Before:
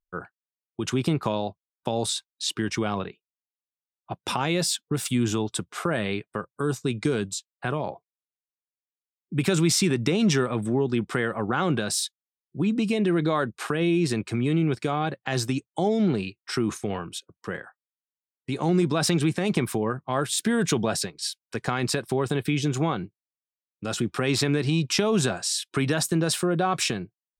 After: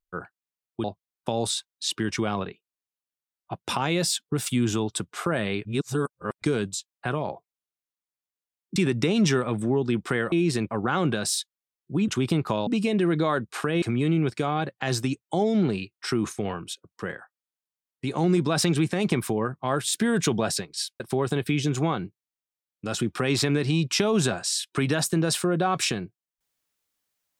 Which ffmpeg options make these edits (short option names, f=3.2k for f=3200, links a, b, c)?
-filter_complex "[0:a]asplit=11[a][b][c][d][e][f][g][h][i][j][k];[a]atrim=end=0.842[l];[b]atrim=start=1.428:end=6.242[m];[c]atrim=start=6.238:end=7.012,asetpts=PTS-STARTPTS,areverse[n];[d]atrim=start=7.008:end=9.352[o];[e]atrim=start=9.798:end=11.362[p];[f]atrim=start=13.878:end=14.272[q];[g]atrim=start=11.358:end=12.732[r];[h]atrim=start=0.838:end=1.432[s];[i]atrim=start=12.728:end=13.882[t];[j]atrim=start=14.268:end=21.452[u];[k]atrim=start=21.988[v];[l][m]acrossfade=d=0.004:c1=hsin:c2=hsin[w];[w][n]acrossfade=d=0.004:c1=hsin:c2=hsin[x];[x][o]acrossfade=d=0.004:c1=hsin:c2=hsin[y];[y][p]acrossfade=d=0.004:c1=hsin:c2=hsin[z];[z][q]acrossfade=d=0.004:c1=hsin:c2=hsin[aa];[aa][r]acrossfade=d=0.004:c1=hsin:c2=hsin[ab];[ab][s]acrossfade=d=0.004:c1=hsin:c2=hsin[ac];[ac][t]acrossfade=d=0.004:c1=hsin:c2=hsin[ad];[ad][u]acrossfade=d=0.004:c1=hsin:c2=hsin[ae];[ae][v]acrossfade=d=0.004:c1=hsin:c2=hsin"